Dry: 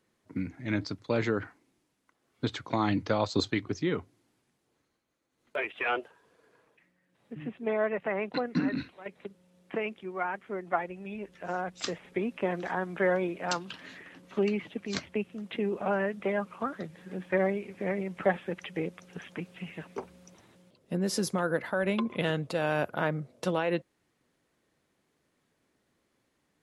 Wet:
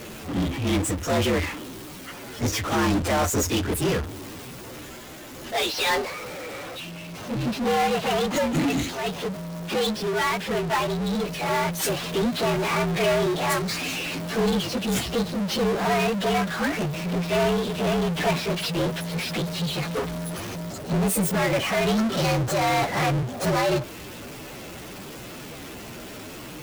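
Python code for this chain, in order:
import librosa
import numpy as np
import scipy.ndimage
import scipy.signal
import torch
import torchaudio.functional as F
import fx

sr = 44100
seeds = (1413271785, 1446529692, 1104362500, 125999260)

y = fx.partial_stretch(x, sr, pct=118)
y = fx.power_curve(y, sr, exponent=0.35)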